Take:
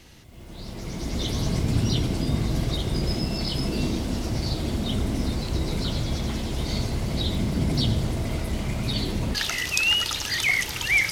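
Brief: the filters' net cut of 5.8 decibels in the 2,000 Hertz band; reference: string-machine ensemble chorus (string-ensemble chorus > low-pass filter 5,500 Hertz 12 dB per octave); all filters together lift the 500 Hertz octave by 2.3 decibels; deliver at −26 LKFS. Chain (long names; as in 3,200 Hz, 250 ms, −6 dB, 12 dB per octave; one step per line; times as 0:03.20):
parametric band 500 Hz +3.5 dB
parametric band 2,000 Hz −7 dB
string-ensemble chorus
low-pass filter 5,500 Hz 12 dB per octave
level +4 dB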